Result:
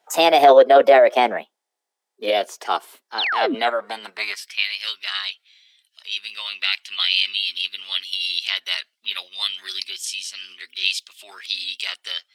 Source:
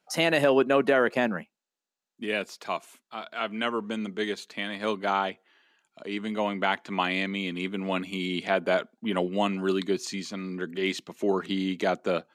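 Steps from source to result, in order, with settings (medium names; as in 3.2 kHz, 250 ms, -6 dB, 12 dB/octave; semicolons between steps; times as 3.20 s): high-pass sweep 430 Hz -> 2.5 kHz, 3.53–4.81 s; formant shift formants +4 st; painted sound fall, 3.18–3.55 s, 220–4500 Hz -28 dBFS; trim +6 dB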